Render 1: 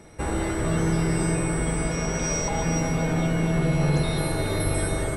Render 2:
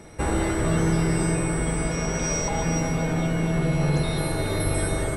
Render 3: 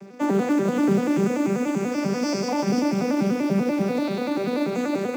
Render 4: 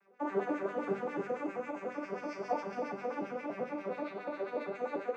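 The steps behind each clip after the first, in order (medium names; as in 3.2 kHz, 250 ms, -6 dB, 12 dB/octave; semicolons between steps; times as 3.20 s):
gain riding 2 s
vocoder on a broken chord major triad, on G3, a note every 97 ms; in parallel at -9 dB: short-mantissa float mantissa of 2-bit; on the sum: feedback echo behind a high-pass 202 ms, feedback 76%, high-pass 4.6 kHz, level -6 dB
LFO band-pass sine 7.4 Hz 520–2200 Hz; on a send at -2 dB: reverberation RT60 0.45 s, pre-delay 6 ms; on the sum: upward expansion 1.5:1, over -47 dBFS; trim -2.5 dB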